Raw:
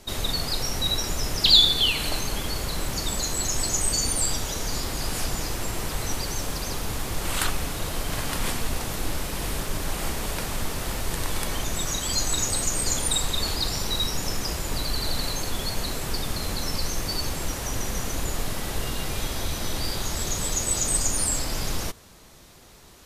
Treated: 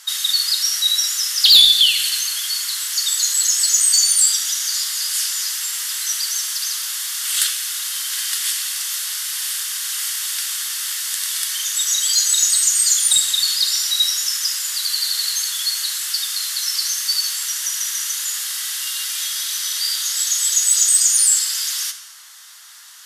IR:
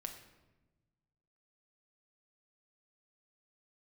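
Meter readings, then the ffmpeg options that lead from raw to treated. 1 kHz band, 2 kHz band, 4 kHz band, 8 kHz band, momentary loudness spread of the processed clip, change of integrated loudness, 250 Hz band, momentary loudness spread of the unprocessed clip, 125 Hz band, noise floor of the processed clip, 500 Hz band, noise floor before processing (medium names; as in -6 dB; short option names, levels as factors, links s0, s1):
-7.0 dB, +3.5 dB, +9.0 dB, +12.0 dB, 10 LU, +9.5 dB, under -25 dB, 8 LU, under -30 dB, -36 dBFS, under -20 dB, -49 dBFS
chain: -filter_complex "[0:a]highpass=f=1400:w=0.5412,highpass=f=1400:w=1.3066,equalizer=f=2400:w=4.2:g=-10.5,bandreject=f=4000:w=20,acrossover=split=2100[s0][s1];[s0]acompressor=threshold=0.00141:ratio=10[s2];[s2][s1]amix=inputs=2:normalize=0,asoftclip=type=tanh:threshold=0.141,asplit=2[s3][s4];[1:a]atrim=start_sample=2205,asetrate=25578,aresample=44100[s5];[s4][s5]afir=irnorm=-1:irlink=0,volume=2[s6];[s3][s6]amix=inputs=2:normalize=0,volume=1.5"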